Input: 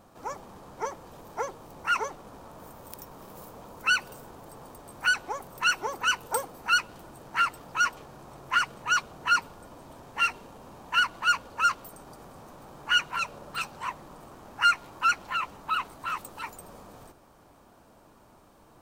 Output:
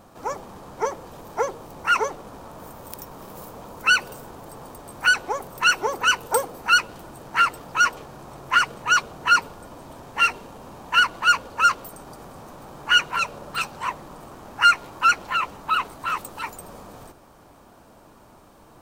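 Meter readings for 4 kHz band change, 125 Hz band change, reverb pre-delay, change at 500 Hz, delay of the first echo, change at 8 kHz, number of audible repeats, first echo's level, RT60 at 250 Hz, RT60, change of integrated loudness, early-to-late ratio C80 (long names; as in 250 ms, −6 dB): +6.0 dB, +6.0 dB, no reverb audible, +9.0 dB, no echo audible, +6.0 dB, no echo audible, no echo audible, no reverb audible, no reverb audible, +6.0 dB, no reverb audible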